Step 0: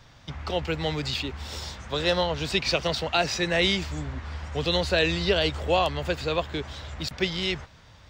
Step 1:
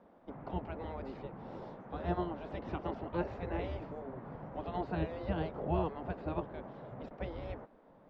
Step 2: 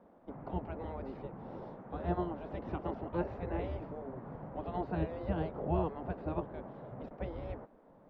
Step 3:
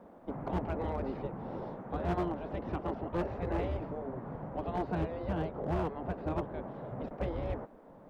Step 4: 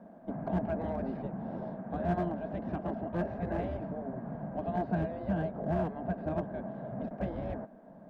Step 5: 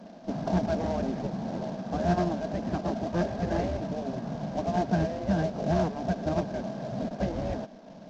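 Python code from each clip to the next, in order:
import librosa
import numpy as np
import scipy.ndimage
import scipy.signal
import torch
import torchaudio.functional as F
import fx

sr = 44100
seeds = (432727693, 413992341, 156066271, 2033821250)

y1 = fx.spec_gate(x, sr, threshold_db=-10, keep='weak')
y1 = scipy.signal.sosfilt(scipy.signal.cheby1(2, 1.0, 590.0, 'lowpass', fs=sr, output='sos'), y1)
y1 = y1 * librosa.db_to_amplitude(1.5)
y2 = fx.high_shelf(y1, sr, hz=2100.0, db=-9.0)
y2 = y2 * librosa.db_to_amplitude(1.0)
y3 = fx.rider(y2, sr, range_db=4, speed_s=2.0)
y3 = np.clip(y3, -10.0 ** (-31.0 / 20.0), 10.0 ** (-31.0 / 20.0))
y3 = y3 * librosa.db_to_amplitude(3.5)
y4 = fx.small_body(y3, sr, hz=(200.0, 650.0, 1600.0), ring_ms=30, db=13)
y4 = y4 * librosa.db_to_amplitude(-6.0)
y5 = fx.cvsd(y4, sr, bps=32000)
y5 = y5 * librosa.db_to_amplitude(5.5)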